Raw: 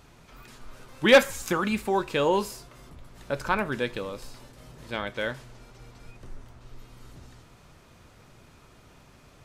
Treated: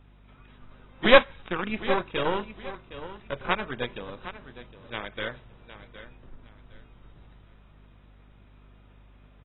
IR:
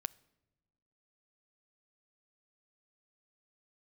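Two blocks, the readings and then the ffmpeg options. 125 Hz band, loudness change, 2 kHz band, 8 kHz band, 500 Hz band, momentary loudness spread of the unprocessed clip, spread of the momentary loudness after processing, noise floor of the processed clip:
-3.0 dB, -1.0 dB, 0.0 dB, under -40 dB, -1.0 dB, 19 LU, 23 LU, -55 dBFS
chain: -filter_complex "[0:a]asplit=2[a][b];[b]alimiter=limit=-19.5dB:level=0:latency=1:release=291,volume=-0.5dB[c];[a][c]amix=inputs=2:normalize=0,aeval=exprs='0.473*(cos(1*acos(clip(val(0)/0.473,-1,1)))-cos(1*PI/2))+0.168*(cos(2*acos(clip(val(0)/0.473,-1,1)))-cos(2*PI/2))+0.0944*(cos(3*acos(clip(val(0)/0.473,-1,1)))-cos(3*PI/2))+0.0075*(cos(7*acos(clip(val(0)/0.473,-1,1)))-cos(7*PI/2))':c=same,aeval=exprs='val(0)+0.00282*(sin(2*PI*50*n/s)+sin(2*PI*2*50*n/s)/2+sin(2*PI*3*50*n/s)/3+sin(2*PI*4*50*n/s)/4+sin(2*PI*5*50*n/s)/5)':c=same,aecho=1:1:763|1526|2289:0.2|0.0519|0.0135,volume=-2.5dB" -ar 22050 -c:a aac -b:a 16k

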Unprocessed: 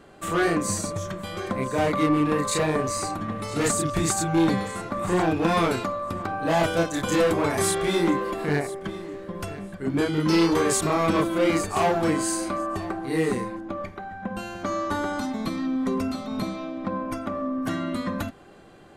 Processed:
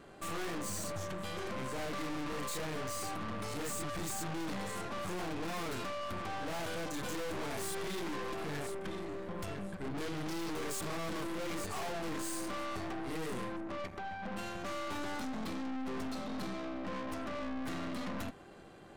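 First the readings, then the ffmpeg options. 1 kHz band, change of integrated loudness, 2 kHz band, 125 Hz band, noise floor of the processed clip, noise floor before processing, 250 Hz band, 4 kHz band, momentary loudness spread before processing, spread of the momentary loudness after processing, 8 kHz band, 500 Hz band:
-13.5 dB, -14.0 dB, -11.5 dB, -14.5 dB, -48 dBFS, -44 dBFS, -15.0 dB, -10.0 dB, 11 LU, 3 LU, -13.0 dB, -15.0 dB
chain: -af "aeval=exprs='(tanh(79.4*val(0)+0.75)-tanh(0.75))/79.4':c=same"

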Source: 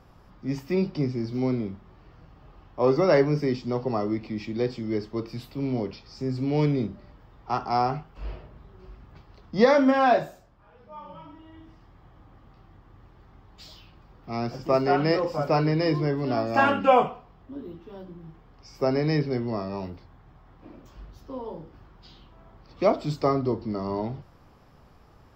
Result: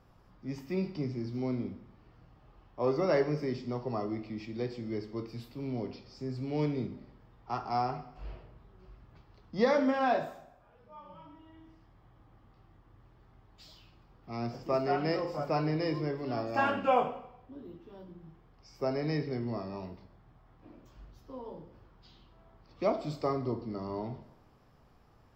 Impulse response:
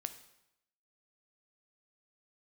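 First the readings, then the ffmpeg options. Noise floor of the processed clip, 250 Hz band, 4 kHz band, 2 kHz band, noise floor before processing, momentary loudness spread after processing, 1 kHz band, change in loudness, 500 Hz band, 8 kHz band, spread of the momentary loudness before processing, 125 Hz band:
-62 dBFS, -8.0 dB, -8.0 dB, -8.0 dB, -55 dBFS, 21 LU, -7.5 dB, -8.0 dB, -8.0 dB, n/a, 20 LU, -8.0 dB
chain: -filter_complex "[1:a]atrim=start_sample=2205[a];[0:a][a]afir=irnorm=-1:irlink=0,volume=-6dB"

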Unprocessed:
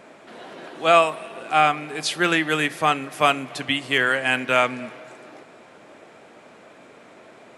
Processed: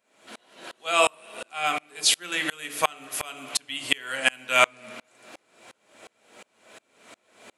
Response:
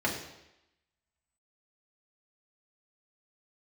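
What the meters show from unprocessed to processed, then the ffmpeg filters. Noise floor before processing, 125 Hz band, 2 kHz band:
-49 dBFS, -15.5 dB, -4.5 dB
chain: -filter_complex "[0:a]crystalizer=i=5.5:c=0,asplit=2[a][b];[1:a]atrim=start_sample=2205,asetrate=66150,aresample=44100[c];[b][c]afir=irnorm=-1:irlink=0,volume=-9.5dB[d];[a][d]amix=inputs=2:normalize=0,aeval=exprs='val(0)*pow(10,-32*if(lt(mod(-2.8*n/s,1),2*abs(-2.8)/1000),1-mod(-2.8*n/s,1)/(2*abs(-2.8)/1000),(mod(-2.8*n/s,1)-2*abs(-2.8)/1000)/(1-2*abs(-2.8)/1000))/20)':c=same,volume=-3.5dB"

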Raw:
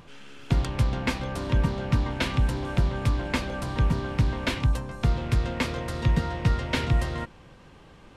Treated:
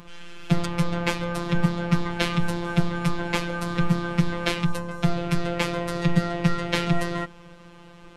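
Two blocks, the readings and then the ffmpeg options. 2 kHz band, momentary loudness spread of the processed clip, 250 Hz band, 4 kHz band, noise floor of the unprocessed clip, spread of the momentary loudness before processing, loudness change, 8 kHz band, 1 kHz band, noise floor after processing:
+3.5 dB, 4 LU, +5.5 dB, +3.0 dB, -51 dBFS, 4 LU, +1.5 dB, +3.5 dB, +3.5 dB, -47 dBFS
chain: -af "afftfilt=real='hypot(re,im)*cos(PI*b)':imag='0':win_size=1024:overlap=0.75,volume=7dB"

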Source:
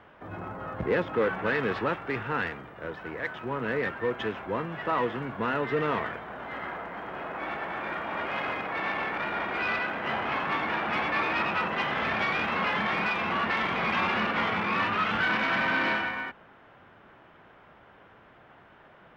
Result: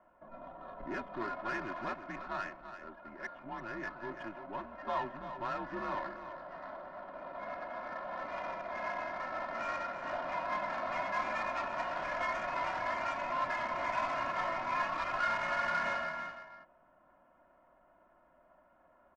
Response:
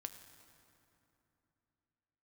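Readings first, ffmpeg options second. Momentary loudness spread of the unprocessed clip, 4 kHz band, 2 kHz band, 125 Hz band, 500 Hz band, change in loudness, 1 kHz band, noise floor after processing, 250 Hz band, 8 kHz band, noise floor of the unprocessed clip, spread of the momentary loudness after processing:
11 LU, -13.0 dB, -10.5 dB, -15.5 dB, -8.5 dB, -8.5 dB, -5.5 dB, -66 dBFS, -12.5 dB, n/a, -55 dBFS, 13 LU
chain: -filter_complex "[0:a]lowshelf=f=570:t=q:w=1.5:g=-7.5,adynamicsmooth=sensitivity=1:basefreq=1.1k,aecho=1:1:2.7:0.88,afreqshift=-100,asplit=2[a][b];[b]aecho=0:1:336:0.299[c];[a][c]amix=inputs=2:normalize=0,volume=-8.5dB"

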